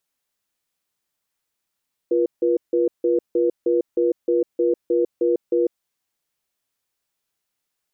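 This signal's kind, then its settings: cadence 348 Hz, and 483 Hz, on 0.15 s, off 0.16 s, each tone -18.5 dBFS 3.66 s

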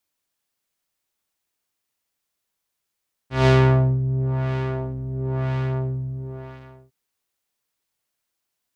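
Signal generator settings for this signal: synth patch with filter wobble C3, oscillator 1 square, interval 0 st, oscillator 2 level -1 dB, filter lowpass, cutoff 690 Hz, Q 0.78, filter envelope 2 oct, filter decay 0.30 s, filter sustain 10%, attack 161 ms, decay 0.53 s, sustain -12 dB, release 1.49 s, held 2.12 s, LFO 0.99 Hz, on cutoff 1.8 oct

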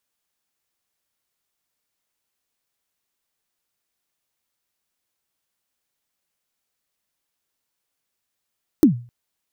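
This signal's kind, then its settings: kick drum length 0.26 s, from 340 Hz, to 120 Hz, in 112 ms, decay 0.37 s, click on, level -5 dB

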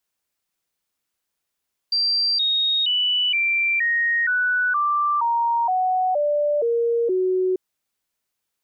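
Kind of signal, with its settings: stepped sine 4.71 kHz down, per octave 3, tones 12, 0.47 s, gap 0.00 s -17.5 dBFS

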